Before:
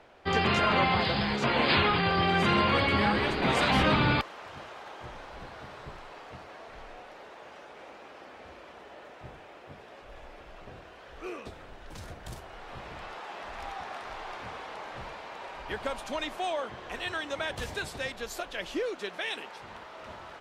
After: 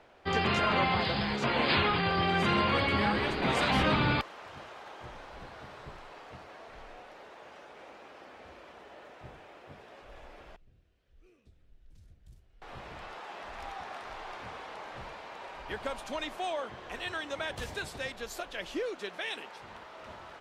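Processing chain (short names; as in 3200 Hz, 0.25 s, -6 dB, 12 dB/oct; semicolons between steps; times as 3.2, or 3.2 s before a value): 10.56–12.62 passive tone stack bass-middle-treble 10-0-1; gain -2.5 dB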